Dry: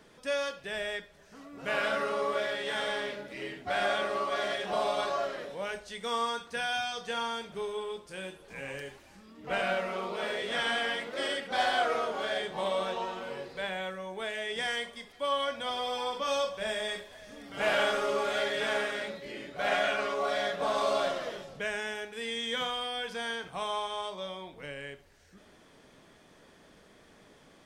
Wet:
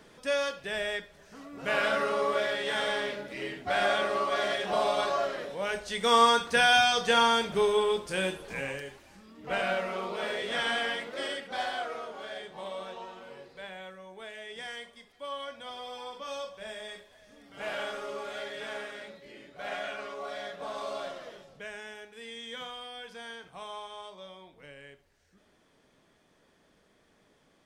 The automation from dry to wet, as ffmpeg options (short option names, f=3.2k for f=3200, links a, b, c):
-af "volume=10.5dB,afade=t=in:st=5.59:d=0.64:silence=0.398107,afade=t=out:st=8.33:d=0.48:silence=0.316228,afade=t=out:st=10.82:d=1.08:silence=0.375837"